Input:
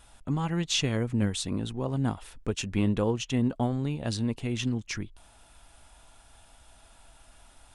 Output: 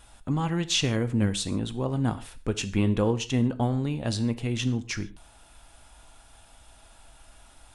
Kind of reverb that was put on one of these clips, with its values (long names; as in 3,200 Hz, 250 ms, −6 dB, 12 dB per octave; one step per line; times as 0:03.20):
reverb whose tail is shaped and stops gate 170 ms falling, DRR 11.5 dB
level +2 dB